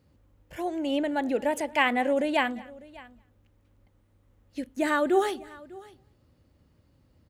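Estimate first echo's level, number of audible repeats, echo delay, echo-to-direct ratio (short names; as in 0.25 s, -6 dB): -24.0 dB, 2, 0.223 s, -19.5 dB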